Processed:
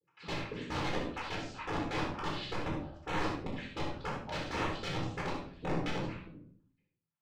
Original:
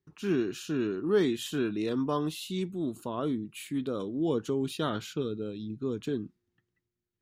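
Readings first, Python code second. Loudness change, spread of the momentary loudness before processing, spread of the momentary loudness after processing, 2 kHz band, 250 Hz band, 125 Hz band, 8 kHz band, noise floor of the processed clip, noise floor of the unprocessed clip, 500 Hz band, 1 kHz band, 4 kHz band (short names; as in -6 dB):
-6.0 dB, 8 LU, 5 LU, +3.5 dB, -9.5 dB, -2.0 dB, -7.0 dB, -83 dBFS, under -85 dBFS, -9.5 dB, +2.5 dB, -1.0 dB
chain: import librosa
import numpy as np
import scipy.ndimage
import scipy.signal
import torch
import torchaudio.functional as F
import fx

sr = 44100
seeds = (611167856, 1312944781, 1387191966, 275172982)

p1 = fx.spec_dropout(x, sr, seeds[0], share_pct=69)
p2 = fx.high_shelf(p1, sr, hz=4200.0, db=-5.5)
p3 = fx.noise_vocoder(p2, sr, seeds[1], bands=8)
p4 = (np.mod(10.0 ** (33.0 / 20.0) * p3 + 1.0, 2.0) - 1.0) / 10.0 ** (33.0 / 20.0)
p5 = fx.filter_lfo_notch(p4, sr, shape='sine', hz=2.0, low_hz=980.0, high_hz=5100.0, q=2.4)
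p6 = fx.air_absorb(p5, sr, metres=150.0)
p7 = p6 + fx.room_early_taps(p6, sr, ms=(62, 74), db=(-9.0, -9.0), dry=0)
y = fx.room_shoebox(p7, sr, seeds[2], volume_m3=670.0, walls='furnished', distance_m=4.1)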